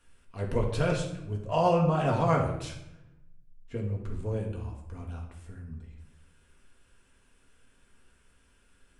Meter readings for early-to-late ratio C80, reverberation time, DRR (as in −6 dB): 9.5 dB, 0.85 s, −1.0 dB